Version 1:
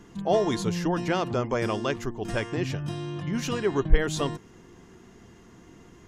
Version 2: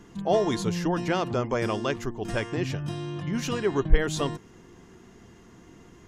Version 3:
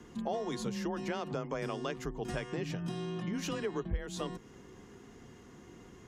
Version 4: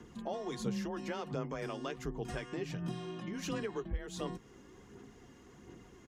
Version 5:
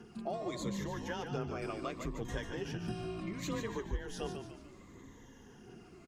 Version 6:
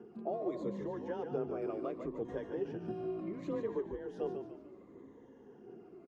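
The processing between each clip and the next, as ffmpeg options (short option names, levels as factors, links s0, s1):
-af anull
-af "afreqshift=25,acompressor=threshold=0.0282:ratio=4,volume=0.75"
-filter_complex "[0:a]aphaser=in_gain=1:out_gain=1:delay=3.6:decay=0.38:speed=1.4:type=sinusoidal,asplit=2[s0][s1];[s1]adelay=15,volume=0.2[s2];[s0][s2]amix=inputs=2:normalize=0,volume=0.668"
-filter_complex "[0:a]afftfilt=real='re*pow(10,10/40*sin(2*PI*(1.1*log(max(b,1)*sr/1024/100)/log(2)-(-0.7)*(pts-256)/sr)))':imag='im*pow(10,10/40*sin(2*PI*(1.1*log(max(b,1)*sr/1024/100)/log(2)-(-0.7)*(pts-256)/sr)))':win_size=1024:overlap=0.75,asplit=6[s0][s1][s2][s3][s4][s5];[s1]adelay=146,afreqshift=-55,volume=0.447[s6];[s2]adelay=292,afreqshift=-110,volume=0.202[s7];[s3]adelay=438,afreqshift=-165,volume=0.0902[s8];[s4]adelay=584,afreqshift=-220,volume=0.0407[s9];[s5]adelay=730,afreqshift=-275,volume=0.0184[s10];[s0][s6][s7][s8][s9][s10]amix=inputs=6:normalize=0,volume=0.841"
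-af "bandpass=f=430:t=q:w=1.5:csg=0,volume=1.78"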